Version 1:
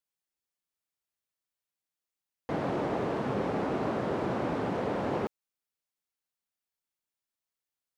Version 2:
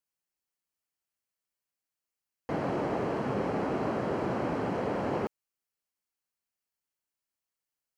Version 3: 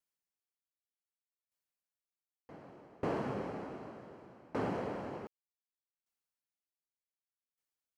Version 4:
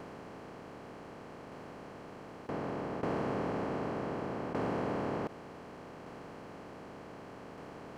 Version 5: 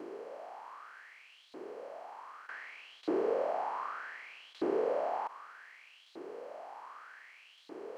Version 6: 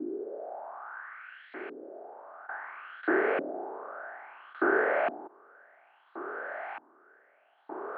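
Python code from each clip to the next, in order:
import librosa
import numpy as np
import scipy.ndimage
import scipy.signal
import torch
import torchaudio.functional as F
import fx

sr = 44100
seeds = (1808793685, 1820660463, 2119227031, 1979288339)

y1 = fx.notch(x, sr, hz=3600.0, q=6.7)
y2 = fx.tremolo_decay(y1, sr, direction='decaying', hz=0.66, depth_db=28)
y2 = y2 * 10.0 ** (-1.5 / 20.0)
y3 = fx.bin_compress(y2, sr, power=0.2)
y3 = y3 * 10.0 ** (-3.0 / 20.0)
y4 = fx.filter_lfo_highpass(y3, sr, shape='saw_up', hz=0.65, low_hz=320.0, high_hz=3900.0, q=6.6)
y4 = y4 * 10.0 ** (-5.0 / 20.0)
y5 = fx.filter_lfo_lowpass(y4, sr, shape='saw_up', hz=0.59, low_hz=270.0, high_hz=2500.0, q=4.6)
y5 = fx.cabinet(y5, sr, low_hz=180.0, low_slope=24, high_hz=3800.0, hz=(200.0, 290.0, 490.0, 1000.0, 1500.0, 2400.0), db=(-7, -5, -10, -7, 9, -3))
y5 = y5 * 10.0 ** (8.0 / 20.0)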